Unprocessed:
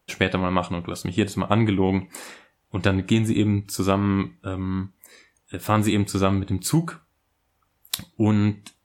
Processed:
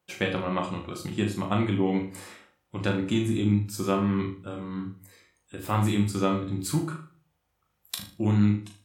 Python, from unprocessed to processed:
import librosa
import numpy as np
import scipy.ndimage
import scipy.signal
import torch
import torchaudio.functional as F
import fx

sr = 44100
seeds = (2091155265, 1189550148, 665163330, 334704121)

p1 = scipy.signal.sosfilt(scipy.signal.butter(2, 70.0, 'highpass', fs=sr, output='sos'), x)
p2 = p1 + fx.room_flutter(p1, sr, wall_m=6.6, rt60_s=0.35, dry=0)
p3 = fx.room_shoebox(p2, sr, seeds[0], volume_m3=140.0, walls='furnished', distance_m=0.93)
y = p3 * 10.0 ** (-8.0 / 20.0)